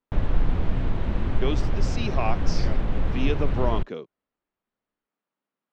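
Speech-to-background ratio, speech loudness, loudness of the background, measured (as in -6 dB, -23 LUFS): -3.5 dB, -32.0 LUFS, -28.5 LUFS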